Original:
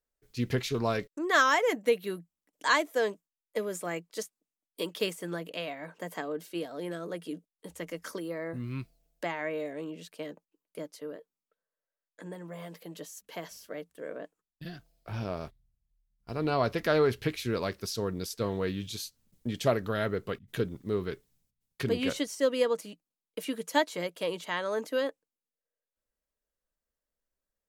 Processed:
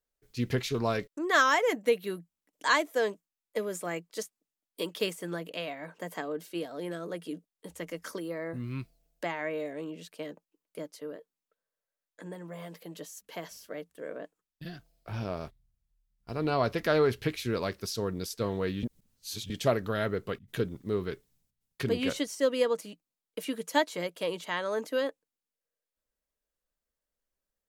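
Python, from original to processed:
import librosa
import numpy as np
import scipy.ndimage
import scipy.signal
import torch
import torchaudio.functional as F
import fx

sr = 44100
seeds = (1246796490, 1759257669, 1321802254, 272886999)

y = fx.edit(x, sr, fx.reverse_span(start_s=18.83, length_s=0.67), tone=tone)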